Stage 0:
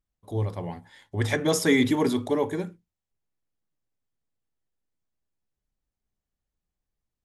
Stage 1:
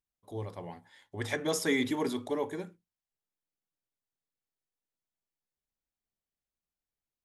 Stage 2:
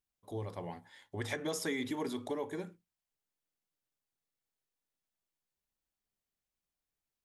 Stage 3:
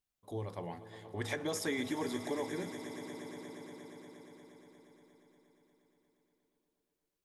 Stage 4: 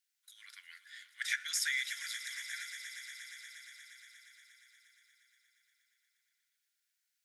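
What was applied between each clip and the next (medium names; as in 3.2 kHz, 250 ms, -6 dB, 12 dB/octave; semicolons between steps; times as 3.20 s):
bass shelf 170 Hz -10 dB; trim -6 dB
compression 3:1, threshold -36 dBFS, peak gain reduction 9.5 dB; trim +1 dB
echo with a slow build-up 118 ms, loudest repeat 5, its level -16 dB
rippled Chebyshev high-pass 1.4 kHz, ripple 3 dB; trim +8 dB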